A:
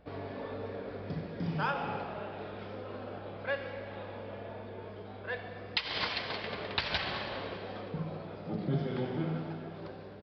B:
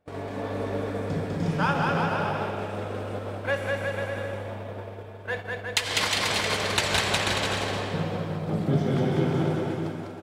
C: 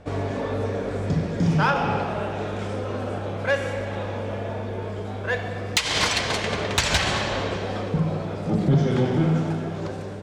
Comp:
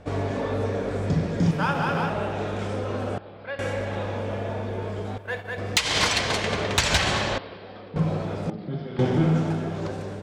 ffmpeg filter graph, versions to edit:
-filter_complex "[1:a]asplit=2[a][b];[0:a]asplit=3[c][d][e];[2:a]asplit=6[f][g][h][i][j][k];[f]atrim=end=1.512[l];[a]atrim=start=1.508:end=2.102[m];[g]atrim=start=2.098:end=3.182[n];[c]atrim=start=3.178:end=3.592[o];[h]atrim=start=3.588:end=5.182[p];[b]atrim=start=5.178:end=5.582[q];[i]atrim=start=5.578:end=7.382[r];[d]atrim=start=7.378:end=7.962[s];[j]atrim=start=7.958:end=8.502[t];[e]atrim=start=8.498:end=8.992[u];[k]atrim=start=8.988[v];[l][m]acrossfade=d=0.004:c1=hsin:c2=hsin[w];[w][n]acrossfade=d=0.004:c1=hsin:c2=hsin[x];[x][o]acrossfade=d=0.004:c1=hsin:c2=hsin[y];[y][p]acrossfade=d=0.004:c1=hsin:c2=hsin[z];[z][q]acrossfade=d=0.004:c1=hsin:c2=hsin[aa];[aa][r]acrossfade=d=0.004:c1=hsin:c2=hsin[ab];[ab][s]acrossfade=d=0.004:c1=hsin:c2=hsin[ac];[ac][t]acrossfade=d=0.004:c1=hsin:c2=hsin[ad];[ad][u]acrossfade=d=0.004:c1=hsin:c2=hsin[ae];[ae][v]acrossfade=d=0.004:c1=hsin:c2=hsin"

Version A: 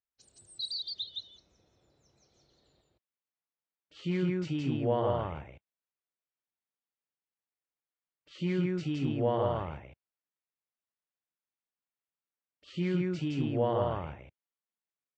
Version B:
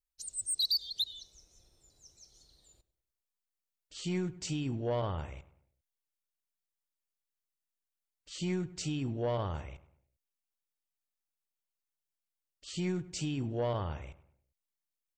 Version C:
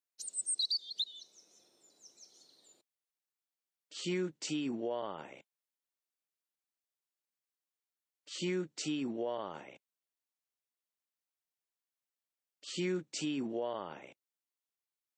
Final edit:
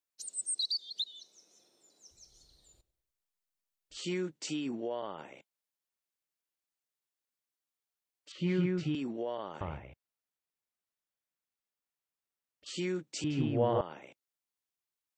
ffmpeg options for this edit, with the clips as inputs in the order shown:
-filter_complex "[0:a]asplit=3[a][b][c];[2:a]asplit=5[d][e][f][g][h];[d]atrim=end=2.112[i];[1:a]atrim=start=2.108:end=3.972[j];[e]atrim=start=3.968:end=8.322[k];[a]atrim=start=8.318:end=8.952[l];[f]atrim=start=8.948:end=9.612[m];[b]atrim=start=9.608:end=12.662[n];[g]atrim=start=12.658:end=13.242[o];[c]atrim=start=13.238:end=13.812[p];[h]atrim=start=13.808[q];[i][j]acrossfade=d=0.004:c1=hsin:c2=hsin[r];[r][k]acrossfade=d=0.004:c1=hsin:c2=hsin[s];[s][l]acrossfade=d=0.004:c1=hsin:c2=hsin[t];[t][m]acrossfade=d=0.004:c1=hsin:c2=hsin[u];[u][n]acrossfade=d=0.004:c1=hsin:c2=hsin[v];[v][o]acrossfade=d=0.004:c1=hsin:c2=hsin[w];[w][p]acrossfade=d=0.004:c1=hsin:c2=hsin[x];[x][q]acrossfade=d=0.004:c1=hsin:c2=hsin"

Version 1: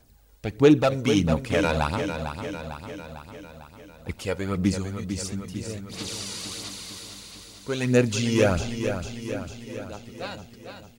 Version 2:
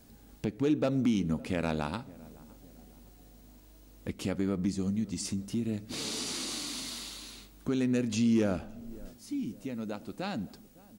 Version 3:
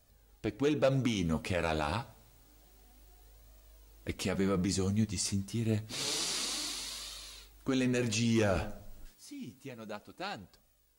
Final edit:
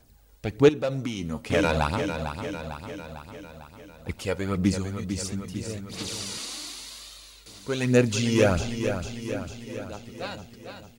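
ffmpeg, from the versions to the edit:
-filter_complex "[2:a]asplit=2[a][b];[0:a]asplit=3[c][d][e];[c]atrim=end=0.692[f];[a]atrim=start=0.688:end=1.502[g];[d]atrim=start=1.498:end=6.382[h];[b]atrim=start=6.378:end=7.462[i];[e]atrim=start=7.458[j];[f][g]acrossfade=d=0.004:c1=hsin:c2=hsin[k];[k][h]acrossfade=d=0.004:c1=hsin:c2=hsin[l];[l][i]acrossfade=d=0.004:c1=hsin:c2=hsin[m];[m][j]acrossfade=d=0.004:c1=hsin:c2=hsin"

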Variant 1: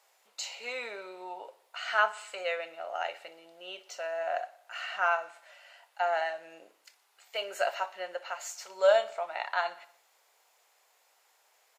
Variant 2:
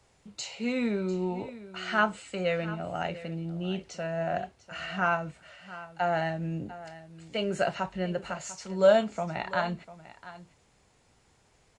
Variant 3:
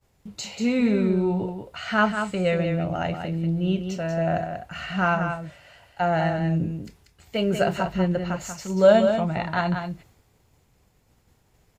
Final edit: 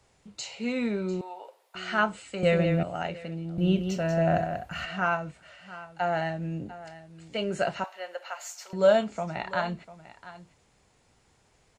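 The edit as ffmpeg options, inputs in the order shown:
-filter_complex "[0:a]asplit=2[a][b];[2:a]asplit=2[c][d];[1:a]asplit=5[e][f][g][h][i];[e]atrim=end=1.212[j];[a]atrim=start=1.208:end=1.752[k];[f]atrim=start=1.748:end=2.432[l];[c]atrim=start=2.428:end=2.832[m];[g]atrim=start=2.828:end=3.582[n];[d]atrim=start=3.578:end=4.852[o];[h]atrim=start=4.848:end=7.842[p];[b]atrim=start=7.838:end=8.732[q];[i]atrim=start=8.728[r];[j][k]acrossfade=d=0.004:c1=hsin:c2=hsin[s];[s][l]acrossfade=d=0.004:c1=hsin:c2=hsin[t];[t][m]acrossfade=d=0.004:c1=hsin:c2=hsin[u];[u][n]acrossfade=d=0.004:c1=hsin:c2=hsin[v];[v][o]acrossfade=d=0.004:c1=hsin:c2=hsin[w];[w][p]acrossfade=d=0.004:c1=hsin:c2=hsin[x];[x][q]acrossfade=d=0.004:c1=hsin:c2=hsin[y];[y][r]acrossfade=d=0.004:c1=hsin:c2=hsin"

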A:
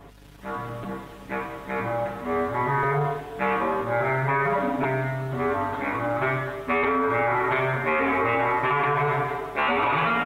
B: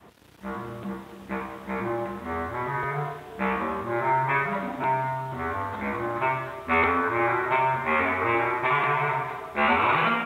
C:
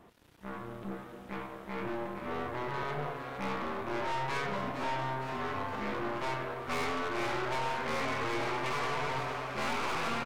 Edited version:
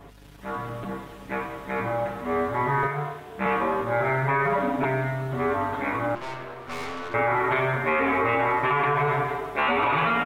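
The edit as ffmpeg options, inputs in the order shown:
-filter_complex "[0:a]asplit=3[a][b][c];[a]atrim=end=2.872[d];[1:a]atrim=start=2.868:end=3.462[e];[b]atrim=start=3.458:end=6.152[f];[2:a]atrim=start=6.148:end=7.142[g];[c]atrim=start=7.138[h];[d][e]acrossfade=d=0.004:c1=hsin:c2=hsin[i];[i][f]acrossfade=d=0.004:c1=hsin:c2=hsin[j];[j][g]acrossfade=d=0.004:c1=hsin:c2=hsin[k];[k][h]acrossfade=d=0.004:c1=hsin:c2=hsin"

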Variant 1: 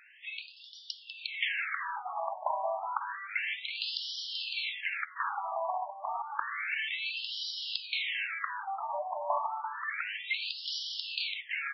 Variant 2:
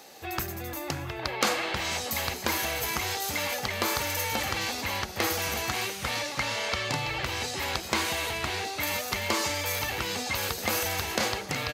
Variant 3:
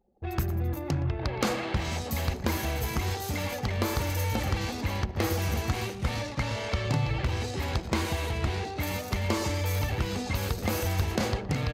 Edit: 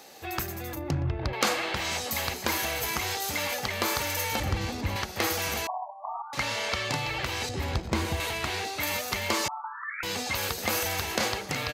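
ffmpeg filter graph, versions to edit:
-filter_complex "[2:a]asplit=3[a][b][c];[0:a]asplit=2[d][e];[1:a]asplit=6[f][g][h][i][j][k];[f]atrim=end=0.752[l];[a]atrim=start=0.748:end=1.332[m];[g]atrim=start=1.328:end=4.402[n];[b]atrim=start=4.398:end=4.962[o];[h]atrim=start=4.958:end=5.672[p];[d]atrim=start=5.668:end=6.332[q];[i]atrim=start=6.328:end=7.492[r];[c]atrim=start=7.488:end=8.202[s];[j]atrim=start=8.198:end=9.482[t];[e]atrim=start=9.478:end=10.032[u];[k]atrim=start=10.028[v];[l][m]acrossfade=d=0.004:c1=hsin:c2=hsin[w];[w][n]acrossfade=d=0.004:c1=hsin:c2=hsin[x];[x][o]acrossfade=d=0.004:c1=hsin:c2=hsin[y];[y][p]acrossfade=d=0.004:c1=hsin:c2=hsin[z];[z][q]acrossfade=d=0.004:c1=hsin:c2=hsin[aa];[aa][r]acrossfade=d=0.004:c1=hsin:c2=hsin[ab];[ab][s]acrossfade=d=0.004:c1=hsin:c2=hsin[ac];[ac][t]acrossfade=d=0.004:c1=hsin:c2=hsin[ad];[ad][u]acrossfade=d=0.004:c1=hsin:c2=hsin[ae];[ae][v]acrossfade=d=0.004:c1=hsin:c2=hsin"

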